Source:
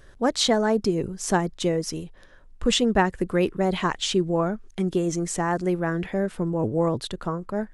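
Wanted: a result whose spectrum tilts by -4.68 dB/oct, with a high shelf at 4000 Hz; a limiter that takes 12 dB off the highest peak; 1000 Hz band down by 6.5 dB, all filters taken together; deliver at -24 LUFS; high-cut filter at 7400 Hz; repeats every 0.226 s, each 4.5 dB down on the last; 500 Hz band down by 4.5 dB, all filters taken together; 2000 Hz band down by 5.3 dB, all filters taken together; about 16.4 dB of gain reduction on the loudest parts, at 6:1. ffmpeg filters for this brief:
-af "lowpass=7.4k,equalizer=f=500:t=o:g=-4.5,equalizer=f=1k:t=o:g=-6,equalizer=f=2k:t=o:g=-6,highshelf=f=4k:g=7,acompressor=threshold=-37dB:ratio=6,alimiter=level_in=10dB:limit=-24dB:level=0:latency=1,volume=-10dB,aecho=1:1:226|452|678|904|1130|1356|1582|1808|2034:0.596|0.357|0.214|0.129|0.0772|0.0463|0.0278|0.0167|0.01,volume=17.5dB"

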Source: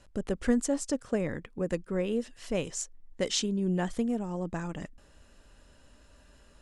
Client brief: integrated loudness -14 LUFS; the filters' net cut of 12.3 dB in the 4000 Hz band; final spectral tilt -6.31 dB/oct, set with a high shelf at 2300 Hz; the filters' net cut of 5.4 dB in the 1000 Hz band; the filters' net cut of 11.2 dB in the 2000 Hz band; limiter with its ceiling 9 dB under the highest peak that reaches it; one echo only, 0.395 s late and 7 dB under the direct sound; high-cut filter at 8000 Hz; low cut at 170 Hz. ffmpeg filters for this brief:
-af "highpass=170,lowpass=8k,equalizer=f=1k:t=o:g=-5,equalizer=f=2k:t=o:g=-7.5,highshelf=f=2.3k:g=-7,equalizer=f=4k:t=o:g=-6.5,alimiter=level_in=2dB:limit=-24dB:level=0:latency=1,volume=-2dB,aecho=1:1:395:0.447,volume=22dB"

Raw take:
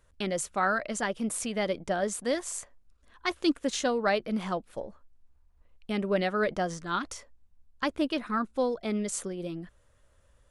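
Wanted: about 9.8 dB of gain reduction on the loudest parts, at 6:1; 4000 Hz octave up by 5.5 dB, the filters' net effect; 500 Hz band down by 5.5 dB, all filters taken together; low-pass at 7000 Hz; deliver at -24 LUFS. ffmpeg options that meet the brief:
-af "lowpass=7k,equalizer=f=500:t=o:g=-7,equalizer=f=4k:t=o:g=7.5,acompressor=threshold=-33dB:ratio=6,volume=14dB"

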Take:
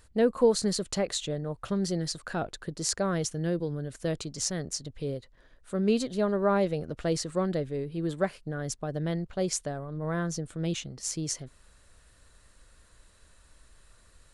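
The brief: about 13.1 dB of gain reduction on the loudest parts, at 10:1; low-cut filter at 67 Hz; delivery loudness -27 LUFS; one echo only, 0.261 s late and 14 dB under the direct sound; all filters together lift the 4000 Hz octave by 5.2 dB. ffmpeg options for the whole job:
-af "highpass=67,equalizer=f=4k:t=o:g=6.5,acompressor=threshold=-30dB:ratio=10,aecho=1:1:261:0.2,volume=8dB"

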